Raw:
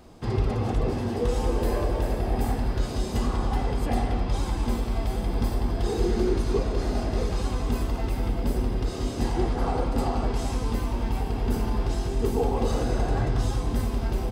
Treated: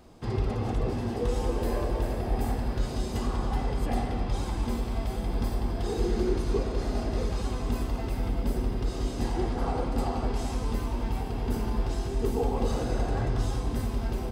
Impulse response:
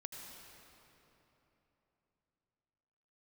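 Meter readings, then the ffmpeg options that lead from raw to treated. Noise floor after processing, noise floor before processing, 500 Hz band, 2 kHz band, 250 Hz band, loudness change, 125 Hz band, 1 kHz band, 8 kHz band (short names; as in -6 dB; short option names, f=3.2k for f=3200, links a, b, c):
-34 dBFS, -31 dBFS, -3.0 dB, -3.0 dB, -3.0 dB, -3.0 dB, -3.0 dB, -3.0 dB, -3.0 dB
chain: -filter_complex "[0:a]asplit=2[a][b];[1:a]atrim=start_sample=2205[c];[b][c]afir=irnorm=-1:irlink=0,volume=-3.5dB[d];[a][d]amix=inputs=2:normalize=0,volume=-6dB"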